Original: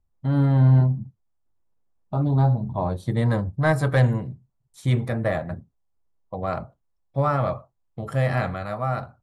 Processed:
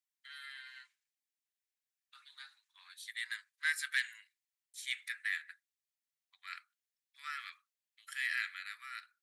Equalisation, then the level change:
Butterworth high-pass 1,700 Hz 48 dB per octave
0.0 dB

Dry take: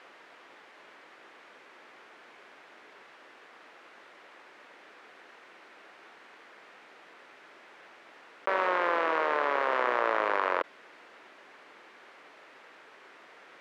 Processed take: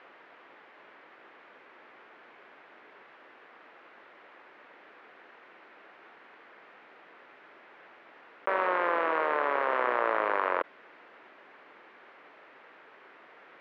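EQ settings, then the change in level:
low-pass filter 2,700 Hz 12 dB per octave
0.0 dB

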